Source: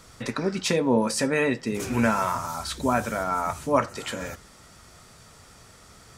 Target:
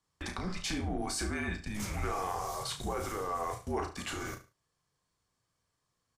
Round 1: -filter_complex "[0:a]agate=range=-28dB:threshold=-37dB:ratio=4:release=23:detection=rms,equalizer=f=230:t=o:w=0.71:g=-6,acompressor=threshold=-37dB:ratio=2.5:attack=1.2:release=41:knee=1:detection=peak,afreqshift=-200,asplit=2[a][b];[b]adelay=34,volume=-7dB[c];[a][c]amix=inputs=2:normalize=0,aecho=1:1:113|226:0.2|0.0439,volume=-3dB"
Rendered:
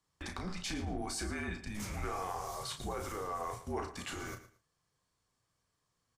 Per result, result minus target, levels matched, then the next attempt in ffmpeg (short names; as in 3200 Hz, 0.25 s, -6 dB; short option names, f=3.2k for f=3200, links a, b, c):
echo 41 ms late; compressor: peak gain reduction +3.5 dB
-filter_complex "[0:a]agate=range=-28dB:threshold=-37dB:ratio=4:release=23:detection=rms,equalizer=f=230:t=o:w=0.71:g=-6,acompressor=threshold=-37dB:ratio=2.5:attack=1.2:release=41:knee=1:detection=peak,afreqshift=-200,asplit=2[a][b];[b]adelay=34,volume=-7dB[c];[a][c]amix=inputs=2:normalize=0,aecho=1:1:72|144:0.2|0.0439,volume=-3dB"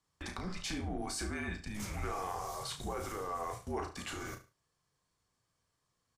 compressor: peak gain reduction +3.5 dB
-filter_complex "[0:a]agate=range=-28dB:threshold=-37dB:ratio=4:release=23:detection=rms,equalizer=f=230:t=o:w=0.71:g=-6,acompressor=threshold=-31dB:ratio=2.5:attack=1.2:release=41:knee=1:detection=peak,afreqshift=-200,asplit=2[a][b];[b]adelay=34,volume=-7dB[c];[a][c]amix=inputs=2:normalize=0,aecho=1:1:72|144:0.2|0.0439,volume=-3dB"